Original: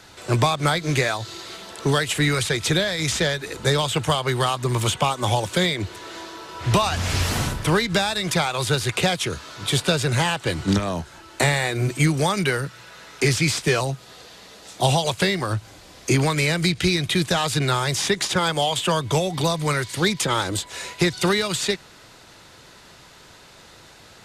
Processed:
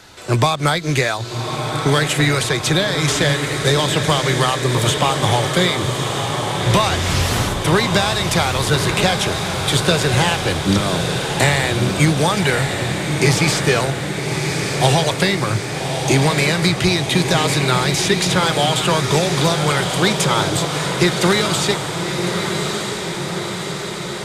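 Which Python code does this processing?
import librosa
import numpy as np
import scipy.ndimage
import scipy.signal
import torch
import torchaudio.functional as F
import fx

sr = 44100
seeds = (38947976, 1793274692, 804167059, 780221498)

y = fx.echo_diffused(x, sr, ms=1189, feedback_pct=67, wet_db=-5)
y = F.gain(torch.from_numpy(y), 3.5).numpy()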